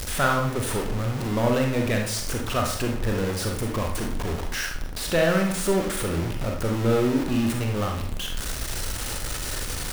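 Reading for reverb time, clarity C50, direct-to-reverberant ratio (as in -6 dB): 0.60 s, 4.5 dB, 1.5 dB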